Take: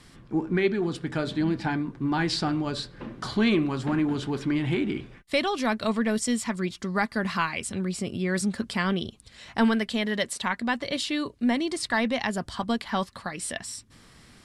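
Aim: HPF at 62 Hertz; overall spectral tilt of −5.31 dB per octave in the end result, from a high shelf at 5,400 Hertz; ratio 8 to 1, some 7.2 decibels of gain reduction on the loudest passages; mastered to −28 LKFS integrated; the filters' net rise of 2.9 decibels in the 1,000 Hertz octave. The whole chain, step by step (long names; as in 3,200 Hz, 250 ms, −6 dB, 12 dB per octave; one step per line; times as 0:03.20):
high-pass filter 62 Hz
parametric band 1,000 Hz +4 dB
high-shelf EQ 5,400 Hz −9 dB
downward compressor 8 to 1, threshold −25 dBFS
level +3 dB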